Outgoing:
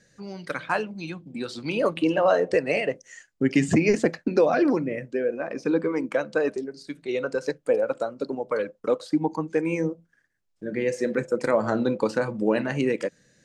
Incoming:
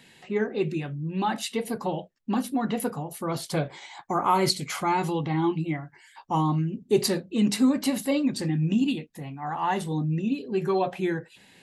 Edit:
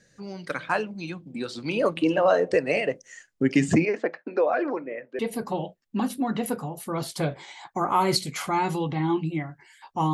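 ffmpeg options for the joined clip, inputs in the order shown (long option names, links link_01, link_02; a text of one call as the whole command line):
ffmpeg -i cue0.wav -i cue1.wav -filter_complex "[0:a]asettb=1/sr,asplit=3[link_01][link_02][link_03];[link_01]atrim=end=3.854[link_04];[link_02]atrim=start=3.85:end=5.19,asetpts=PTS-STARTPTS,afade=type=in:duration=0.004:curve=qsin,afade=type=out:start_time=1.336:duration=0.004:curve=qsin,highpass=490,lowpass=2100[link_05];[link_03]atrim=start=5.186[link_06];[link_04][link_05]acrossfade=duration=0.004:curve1=hsin:curve2=qsin[link_07];[link_07][link_06]acrossfade=duration=0.004:curve1=qsin:curve2=hsin,apad=whole_dur=10.13,atrim=end=10.13,atrim=end=5.192[link_08];[1:a]atrim=start=1.528:end=6.47[link_09];[link_08][link_09]acrossfade=duration=0.004:curve1=hsin:curve2=hsin" out.wav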